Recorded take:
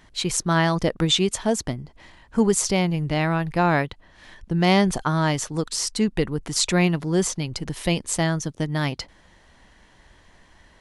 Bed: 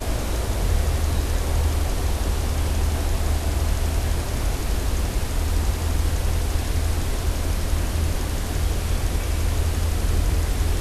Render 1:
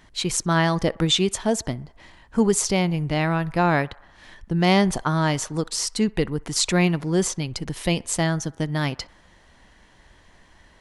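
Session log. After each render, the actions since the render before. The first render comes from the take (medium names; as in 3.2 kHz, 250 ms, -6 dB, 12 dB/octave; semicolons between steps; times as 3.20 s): band-passed feedback delay 63 ms, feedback 71%, band-pass 1.1 kHz, level -22.5 dB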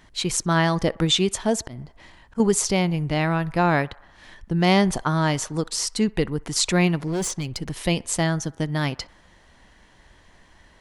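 1.65–2.40 s: slow attack 121 ms; 7.07–7.80 s: hard clipper -22 dBFS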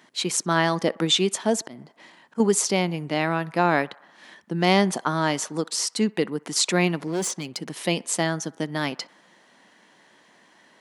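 high-pass 190 Hz 24 dB/octave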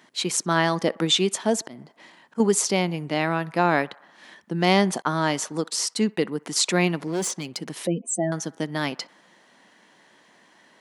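5.02–6.31 s: expander -41 dBFS; 7.87–8.32 s: spectral contrast enhancement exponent 3.2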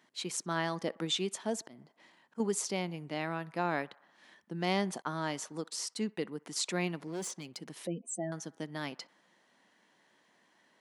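trim -12 dB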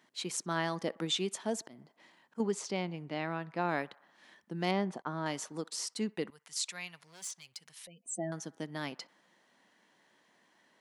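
2.41–3.69 s: distance through air 77 m; 4.71–5.26 s: low-pass 1.5 kHz 6 dB/octave; 6.30–8.06 s: amplifier tone stack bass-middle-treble 10-0-10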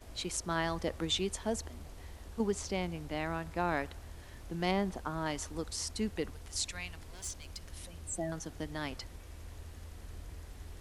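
add bed -25.5 dB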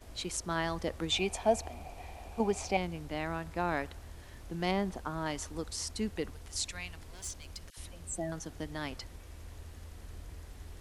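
1.12–2.77 s: small resonant body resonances 740/2400 Hz, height 16 dB, ringing for 20 ms; 7.70–8.11 s: phase dispersion lows, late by 70 ms, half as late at 1.2 kHz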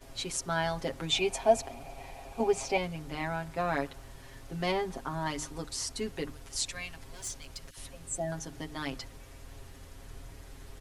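hum notches 50/100/150/200/250/300 Hz; comb 7.4 ms, depth 89%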